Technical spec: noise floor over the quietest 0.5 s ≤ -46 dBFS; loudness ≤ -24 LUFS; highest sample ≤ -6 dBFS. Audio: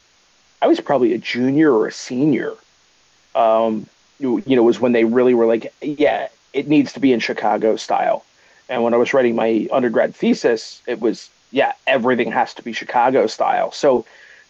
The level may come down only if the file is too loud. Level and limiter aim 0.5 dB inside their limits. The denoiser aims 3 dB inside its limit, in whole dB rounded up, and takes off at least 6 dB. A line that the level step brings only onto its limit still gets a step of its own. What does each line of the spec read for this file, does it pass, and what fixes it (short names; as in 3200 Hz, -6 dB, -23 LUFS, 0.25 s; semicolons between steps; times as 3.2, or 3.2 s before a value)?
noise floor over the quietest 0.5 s -56 dBFS: OK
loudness -17.5 LUFS: fail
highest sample -5.0 dBFS: fail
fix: gain -7 dB